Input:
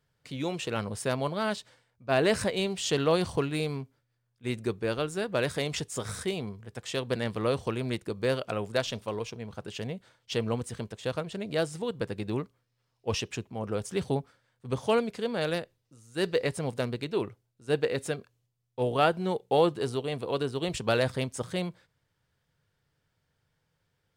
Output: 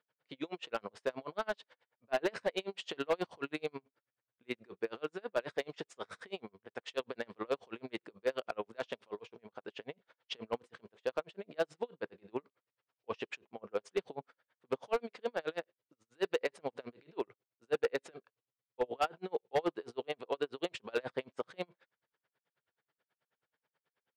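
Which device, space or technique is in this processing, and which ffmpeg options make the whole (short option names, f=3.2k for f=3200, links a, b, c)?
helicopter radio: -af "highpass=380,lowpass=3k,aeval=exprs='val(0)*pow(10,-37*(0.5-0.5*cos(2*PI*9.3*n/s))/20)':c=same,asoftclip=type=hard:threshold=-26dB,volume=2dB"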